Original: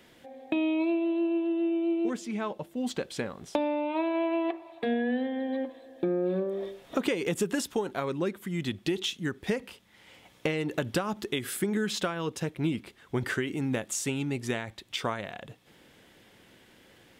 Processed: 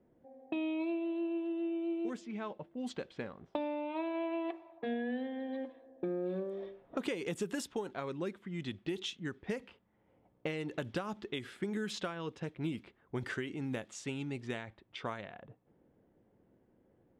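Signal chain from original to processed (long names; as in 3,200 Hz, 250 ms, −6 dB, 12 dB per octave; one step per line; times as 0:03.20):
low-pass that shuts in the quiet parts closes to 550 Hz, open at −25 dBFS
level −8 dB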